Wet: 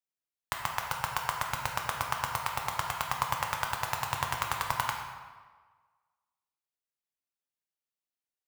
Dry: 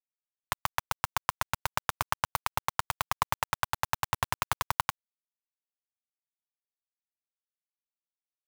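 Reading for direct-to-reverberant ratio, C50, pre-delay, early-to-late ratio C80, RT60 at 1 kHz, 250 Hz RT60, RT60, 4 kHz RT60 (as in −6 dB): 1.0 dB, 3.5 dB, 7 ms, 5.0 dB, 1.5 s, 1.3 s, 1.5 s, 1.0 s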